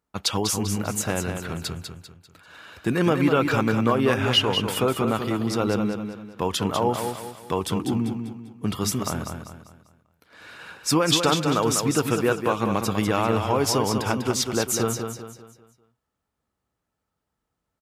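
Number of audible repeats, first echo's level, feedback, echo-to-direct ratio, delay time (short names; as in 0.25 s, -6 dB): 4, -6.5 dB, 39%, -6.0 dB, 0.197 s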